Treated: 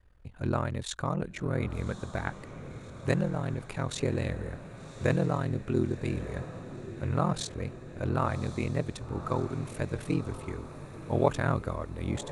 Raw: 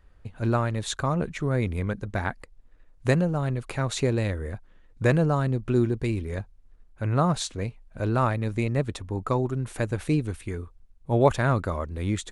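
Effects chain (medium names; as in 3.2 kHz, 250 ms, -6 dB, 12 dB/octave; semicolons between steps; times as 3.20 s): ring modulator 21 Hz; echo that smears into a reverb 1137 ms, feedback 60%, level -12.5 dB; trim -2.5 dB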